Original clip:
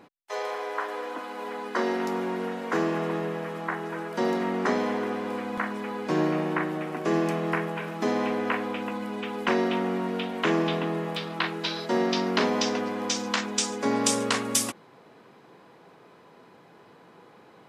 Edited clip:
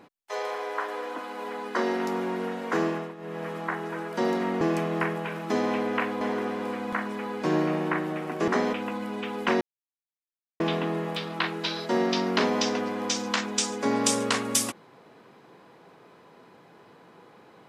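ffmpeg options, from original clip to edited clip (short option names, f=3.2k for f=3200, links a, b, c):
-filter_complex "[0:a]asplit=9[a][b][c][d][e][f][g][h][i];[a]atrim=end=3.15,asetpts=PTS-STARTPTS,afade=t=out:st=2.86:d=0.29:silence=0.16788[j];[b]atrim=start=3.15:end=3.17,asetpts=PTS-STARTPTS,volume=-15.5dB[k];[c]atrim=start=3.17:end=4.612,asetpts=PTS-STARTPTS,afade=t=in:d=0.29:silence=0.16788[l];[d]atrim=start=7.128:end=8.732[m];[e]atrim=start=4.858:end=7.132[n];[f]atrim=start=4.608:end=4.862[o];[g]atrim=start=8.728:end=9.61,asetpts=PTS-STARTPTS,afade=t=out:st=0.878:d=0.004:c=hsin[p];[h]atrim=start=9.61:end=10.6,asetpts=PTS-STARTPTS,volume=0[q];[i]atrim=start=10.6,asetpts=PTS-STARTPTS,afade=t=in:d=0.004:c=hsin[r];[j][k][l]concat=n=3:v=0:a=1[s];[s][m]acrossfade=d=0.004:c1=hsin:c2=hsin[t];[t][n]acrossfade=d=0.004:c1=hsin:c2=hsin[u];[u][o]acrossfade=d=0.004:c1=hsin:c2=hsin[v];[p][q][r]concat=n=3:v=0:a=1[w];[v][w]acrossfade=d=0.004:c1=hsin:c2=hsin"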